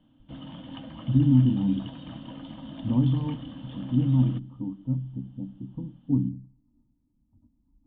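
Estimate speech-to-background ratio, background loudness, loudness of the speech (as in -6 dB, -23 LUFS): 16.0 dB, -41.5 LUFS, -25.5 LUFS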